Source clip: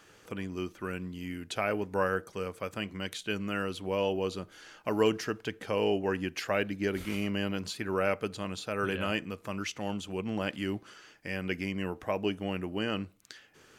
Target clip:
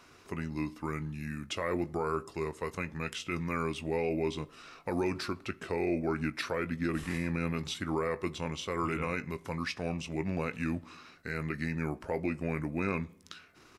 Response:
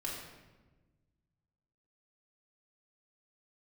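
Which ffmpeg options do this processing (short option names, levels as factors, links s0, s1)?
-filter_complex "[0:a]alimiter=limit=0.0891:level=0:latency=1:release=55,asetrate=37084,aresample=44100,atempo=1.18921,asplit=2[s0][s1];[s1]adelay=20,volume=0.224[s2];[s0][s2]amix=inputs=2:normalize=0,asplit=2[s3][s4];[1:a]atrim=start_sample=2205,asetrate=79380,aresample=44100[s5];[s4][s5]afir=irnorm=-1:irlink=0,volume=0.15[s6];[s3][s6]amix=inputs=2:normalize=0"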